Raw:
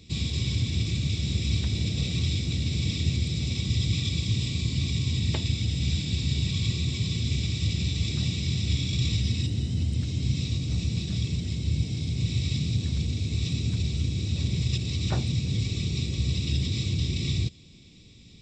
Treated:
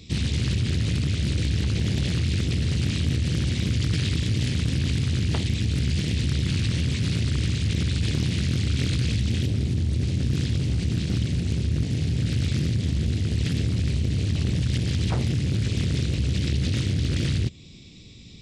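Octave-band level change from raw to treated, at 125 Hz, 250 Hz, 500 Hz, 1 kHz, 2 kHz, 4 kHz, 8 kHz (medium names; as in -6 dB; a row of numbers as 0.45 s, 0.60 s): +3.0 dB, +4.5 dB, +6.5 dB, no reading, +4.0 dB, -0.5 dB, +1.0 dB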